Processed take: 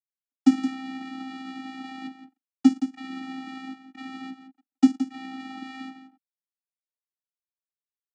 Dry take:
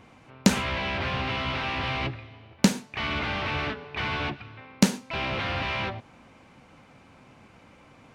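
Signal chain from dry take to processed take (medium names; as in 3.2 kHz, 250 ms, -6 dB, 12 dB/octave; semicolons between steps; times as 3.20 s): one-sided wavefolder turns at -12.5 dBFS; in parallel at 0 dB: compression, threshold -44 dBFS, peak gain reduction 26.5 dB; on the sum: treble shelf 6.3 kHz +8.5 dB; crossover distortion -32 dBFS; delay 171 ms -10.5 dB; gate with hold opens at -41 dBFS; vocoder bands 8, square 263 Hz; tape noise reduction on one side only decoder only; trim +3.5 dB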